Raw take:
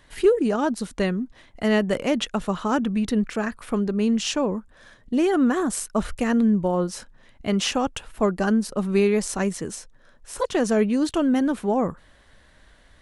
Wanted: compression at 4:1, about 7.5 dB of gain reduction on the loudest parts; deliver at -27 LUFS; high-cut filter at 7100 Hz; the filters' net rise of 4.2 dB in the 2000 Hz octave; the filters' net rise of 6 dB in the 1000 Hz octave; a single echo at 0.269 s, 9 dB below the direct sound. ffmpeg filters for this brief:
-af "lowpass=7.1k,equalizer=f=1k:t=o:g=7,equalizer=f=2k:t=o:g=3,acompressor=threshold=-21dB:ratio=4,aecho=1:1:269:0.355,volume=-1dB"

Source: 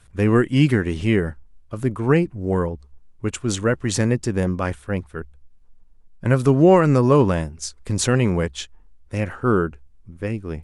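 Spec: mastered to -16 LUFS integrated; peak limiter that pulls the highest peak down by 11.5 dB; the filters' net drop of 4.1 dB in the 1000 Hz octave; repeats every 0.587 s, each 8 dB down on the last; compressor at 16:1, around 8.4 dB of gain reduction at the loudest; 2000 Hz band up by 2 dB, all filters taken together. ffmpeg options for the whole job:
-af "equalizer=f=1k:t=o:g=-7,equalizer=f=2k:t=o:g=5,acompressor=threshold=-18dB:ratio=16,alimiter=limit=-20.5dB:level=0:latency=1,aecho=1:1:587|1174|1761|2348|2935:0.398|0.159|0.0637|0.0255|0.0102,volume=15dB"

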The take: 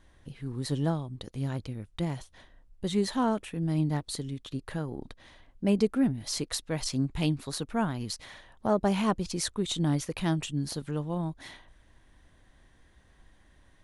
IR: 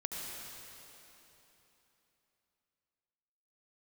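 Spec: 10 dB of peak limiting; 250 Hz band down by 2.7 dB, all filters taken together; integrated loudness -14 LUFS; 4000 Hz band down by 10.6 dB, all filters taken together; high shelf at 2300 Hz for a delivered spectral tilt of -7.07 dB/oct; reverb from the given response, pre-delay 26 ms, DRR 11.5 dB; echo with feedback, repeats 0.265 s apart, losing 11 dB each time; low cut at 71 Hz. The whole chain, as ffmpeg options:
-filter_complex "[0:a]highpass=71,equalizer=f=250:t=o:g=-3.5,highshelf=f=2.3k:g=-6.5,equalizer=f=4k:t=o:g=-7,alimiter=level_in=1dB:limit=-24dB:level=0:latency=1,volume=-1dB,aecho=1:1:265|530|795:0.282|0.0789|0.0221,asplit=2[a][b];[1:a]atrim=start_sample=2205,adelay=26[c];[b][c]afir=irnorm=-1:irlink=0,volume=-13.5dB[d];[a][d]amix=inputs=2:normalize=0,volume=22dB"

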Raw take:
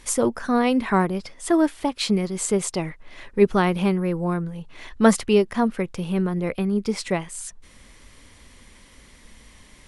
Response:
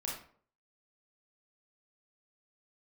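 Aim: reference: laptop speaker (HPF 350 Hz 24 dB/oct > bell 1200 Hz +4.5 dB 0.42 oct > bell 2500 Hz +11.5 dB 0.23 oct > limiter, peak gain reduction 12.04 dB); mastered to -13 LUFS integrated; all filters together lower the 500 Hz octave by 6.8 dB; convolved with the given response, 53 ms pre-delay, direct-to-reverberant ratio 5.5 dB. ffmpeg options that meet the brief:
-filter_complex "[0:a]equalizer=f=500:t=o:g=-8,asplit=2[a][b];[1:a]atrim=start_sample=2205,adelay=53[c];[b][c]afir=irnorm=-1:irlink=0,volume=-7dB[d];[a][d]amix=inputs=2:normalize=0,highpass=f=350:w=0.5412,highpass=f=350:w=1.3066,equalizer=f=1.2k:t=o:w=0.42:g=4.5,equalizer=f=2.5k:t=o:w=0.23:g=11.5,volume=15.5dB,alimiter=limit=-1dB:level=0:latency=1"

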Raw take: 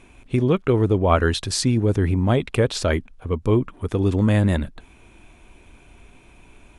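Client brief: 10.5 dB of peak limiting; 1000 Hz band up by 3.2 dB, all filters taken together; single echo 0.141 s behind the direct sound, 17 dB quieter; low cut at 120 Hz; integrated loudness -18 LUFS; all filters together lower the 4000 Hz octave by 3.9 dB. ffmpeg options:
-af "highpass=120,equalizer=f=1k:t=o:g=4.5,equalizer=f=4k:t=o:g=-5,alimiter=limit=-11dB:level=0:latency=1,aecho=1:1:141:0.141,volume=6dB"

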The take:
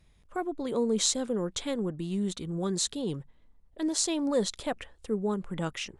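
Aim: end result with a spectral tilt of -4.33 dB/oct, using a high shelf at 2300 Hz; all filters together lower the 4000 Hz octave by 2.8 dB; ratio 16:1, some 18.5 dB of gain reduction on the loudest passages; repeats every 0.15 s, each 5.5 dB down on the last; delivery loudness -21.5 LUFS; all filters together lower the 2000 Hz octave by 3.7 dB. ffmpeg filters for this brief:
-af "equalizer=f=2k:t=o:g=-6,highshelf=f=2.3k:g=5,equalizer=f=4k:t=o:g=-6.5,acompressor=threshold=-41dB:ratio=16,aecho=1:1:150|300|450|600|750|900|1050:0.531|0.281|0.149|0.079|0.0419|0.0222|0.0118,volume=22.5dB"

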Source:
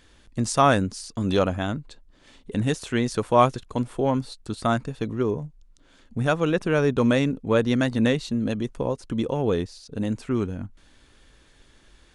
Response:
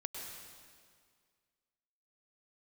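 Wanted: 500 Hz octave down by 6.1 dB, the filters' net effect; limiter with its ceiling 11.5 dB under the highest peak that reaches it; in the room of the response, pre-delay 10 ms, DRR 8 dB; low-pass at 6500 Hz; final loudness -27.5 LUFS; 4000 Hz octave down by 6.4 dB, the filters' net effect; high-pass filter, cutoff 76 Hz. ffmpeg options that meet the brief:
-filter_complex "[0:a]highpass=76,lowpass=6.5k,equalizer=f=500:t=o:g=-7.5,equalizer=f=4k:t=o:g=-7.5,alimiter=limit=-19.5dB:level=0:latency=1,asplit=2[a][b];[1:a]atrim=start_sample=2205,adelay=10[c];[b][c]afir=irnorm=-1:irlink=0,volume=-7.5dB[d];[a][d]amix=inputs=2:normalize=0,volume=3dB"

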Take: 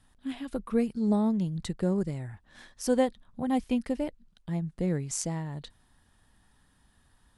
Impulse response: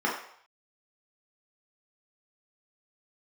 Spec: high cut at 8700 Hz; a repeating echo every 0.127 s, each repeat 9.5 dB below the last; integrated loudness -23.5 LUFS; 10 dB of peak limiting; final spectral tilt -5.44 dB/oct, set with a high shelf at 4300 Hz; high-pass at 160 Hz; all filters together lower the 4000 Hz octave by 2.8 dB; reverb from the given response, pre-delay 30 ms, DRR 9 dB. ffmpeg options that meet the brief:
-filter_complex "[0:a]highpass=160,lowpass=8.7k,equalizer=f=4k:t=o:g=-8.5,highshelf=f=4.3k:g=7,alimiter=limit=-23.5dB:level=0:latency=1,aecho=1:1:127|254|381|508:0.335|0.111|0.0365|0.012,asplit=2[a][b];[1:a]atrim=start_sample=2205,adelay=30[c];[b][c]afir=irnorm=-1:irlink=0,volume=-21.5dB[d];[a][d]amix=inputs=2:normalize=0,volume=10dB"

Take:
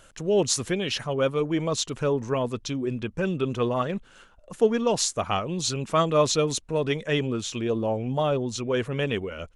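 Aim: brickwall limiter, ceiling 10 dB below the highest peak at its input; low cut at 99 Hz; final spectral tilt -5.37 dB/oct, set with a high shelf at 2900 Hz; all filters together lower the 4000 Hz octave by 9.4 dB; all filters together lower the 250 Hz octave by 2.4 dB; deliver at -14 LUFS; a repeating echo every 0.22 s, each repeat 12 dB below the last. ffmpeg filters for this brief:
-af "highpass=99,equalizer=f=250:t=o:g=-3,highshelf=f=2.9k:g=-4,equalizer=f=4k:t=o:g=-9,alimiter=limit=-19.5dB:level=0:latency=1,aecho=1:1:220|440|660:0.251|0.0628|0.0157,volume=16dB"

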